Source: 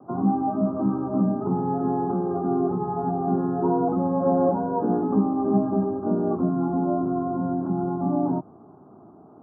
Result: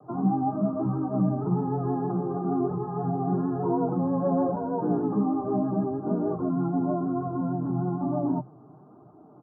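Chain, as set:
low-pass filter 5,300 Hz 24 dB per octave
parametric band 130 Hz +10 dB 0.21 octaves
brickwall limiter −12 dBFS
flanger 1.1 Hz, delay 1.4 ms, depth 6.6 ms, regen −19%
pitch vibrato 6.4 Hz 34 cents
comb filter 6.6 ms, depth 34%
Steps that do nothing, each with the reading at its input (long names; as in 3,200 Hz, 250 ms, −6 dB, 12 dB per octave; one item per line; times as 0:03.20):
low-pass filter 5,300 Hz: nothing at its input above 1,300 Hz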